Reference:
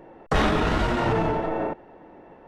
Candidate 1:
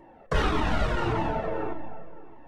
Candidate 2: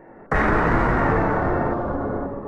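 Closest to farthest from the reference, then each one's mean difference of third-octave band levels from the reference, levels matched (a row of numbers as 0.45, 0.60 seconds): 1, 2; 2.5, 6.5 decibels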